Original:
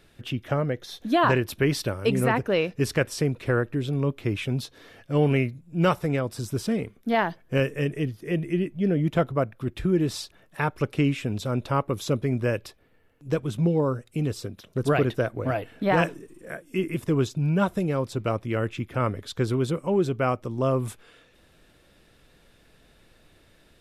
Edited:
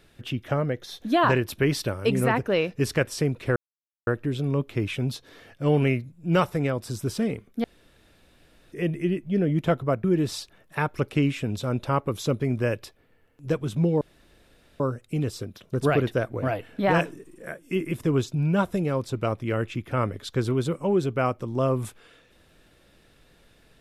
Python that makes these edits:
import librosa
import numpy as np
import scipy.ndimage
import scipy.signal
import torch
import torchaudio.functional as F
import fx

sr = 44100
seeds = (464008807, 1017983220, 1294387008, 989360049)

y = fx.edit(x, sr, fx.insert_silence(at_s=3.56, length_s=0.51),
    fx.room_tone_fill(start_s=7.13, length_s=1.08),
    fx.cut(start_s=9.53, length_s=0.33),
    fx.insert_room_tone(at_s=13.83, length_s=0.79), tone=tone)